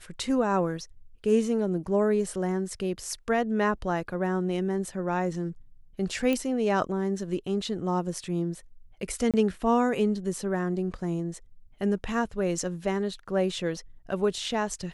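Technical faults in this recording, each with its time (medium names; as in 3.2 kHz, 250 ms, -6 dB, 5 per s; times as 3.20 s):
6.33 s: pop -15 dBFS
9.31–9.34 s: dropout 27 ms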